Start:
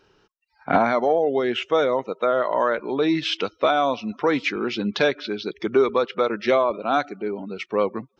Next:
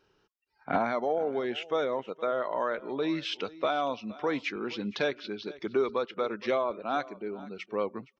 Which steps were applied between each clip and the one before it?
single-tap delay 467 ms −19.5 dB
level −9 dB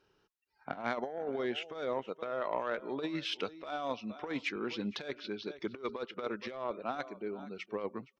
harmonic generator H 3 −16 dB, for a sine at −15.5 dBFS
compressor whose output falls as the input rises −35 dBFS, ratio −0.5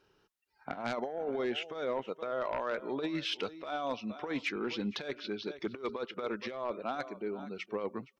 sine wavefolder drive 7 dB, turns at −17.5 dBFS
level −8.5 dB

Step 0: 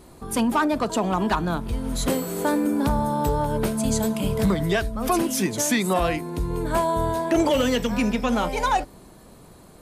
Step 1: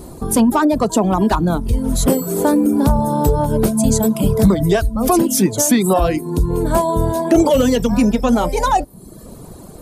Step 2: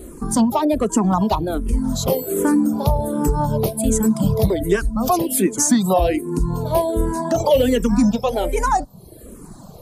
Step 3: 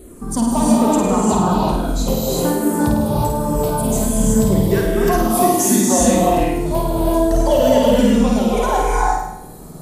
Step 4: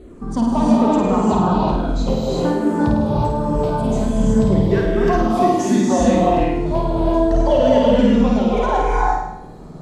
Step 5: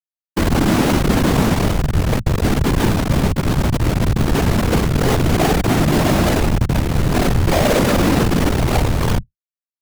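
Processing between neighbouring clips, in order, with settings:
reverb reduction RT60 0.7 s; parametric band 2,200 Hz −11 dB 2.2 octaves; in parallel at +0.5 dB: downward compressor, threshold −34 dBFS, peak gain reduction 15.5 dB; on the sum: level +8.5 dB
frequency shifter mixed with the dry sound −1.3 Hz
flutter between parallel walls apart 8.9 metres, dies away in 0.81 s; reverb whose tail is shaped and stops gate 390 ms rising, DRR −3.5 dB; level −4 dB
high-frequency loss of the air 160 metres
comparator with hysteresis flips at −14 dBFS; tape wow and flutter 140 cents; random phases in short frames; level +2 dB

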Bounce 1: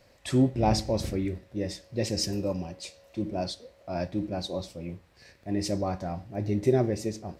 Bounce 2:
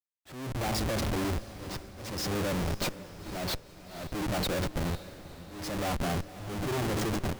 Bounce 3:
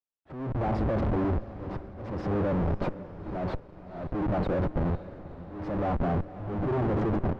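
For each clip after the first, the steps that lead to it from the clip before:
comparator with hysteresis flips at −38.5 dBFS; volume swells 429 ms; feedback delay with all-pass diffusion 503 ms, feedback 49%, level −15 dB
in parallel at −4 dB: bit reduction 8 bits; on the sum: low-pass filter 1,100 Hz 12 dB per octave

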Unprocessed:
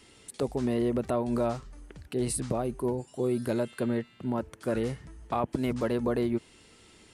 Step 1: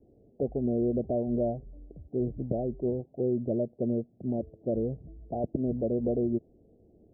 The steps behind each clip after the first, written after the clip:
Butterworth low-pass 710 Hz 72 dB per octave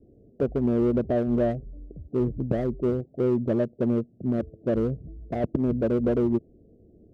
adaptive Wiener filter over 41 samples
in parallel at −11 dB: hard clipping −27 dBFS, distortion −12 dB
on the sum: level +4 dB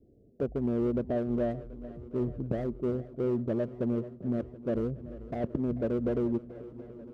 feedback echo with a long and a short gap by turns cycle 731 ms, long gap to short 1.5 to 1, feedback 61%, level −17.5 dB
level −6 dB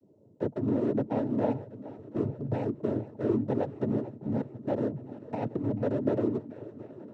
cochlear-implant simulation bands 12
level +1.5 dB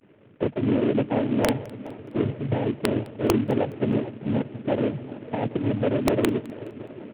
variable-slope delta modulation 16 kbit/s
wrap-around overflow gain 16.5 dB
repeating echo 209 ms, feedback 44%, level −23 dB
level +6 dB

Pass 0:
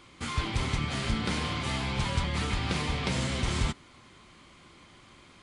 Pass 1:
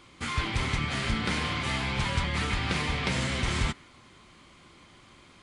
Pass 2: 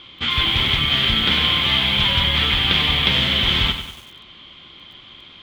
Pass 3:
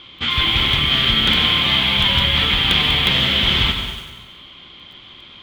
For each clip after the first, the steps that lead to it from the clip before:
dynamic equaliser 1,900 Hz, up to +5 dB, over −50 dBFS, Q 1.1
low-pass with resonance 3,300 Hz, resonance Q 8.1; feedback echo at a low word length 96 ms, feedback 55%, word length 7 bits, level −9 dB; level +4.5 dB
in parallel at −11.5 dB: wrap-around overflow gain 6 dB; on the sum: convolution reverb RT60 1.2 s, pre-delay 118 ms, DRR 8 dB; level −1 dB

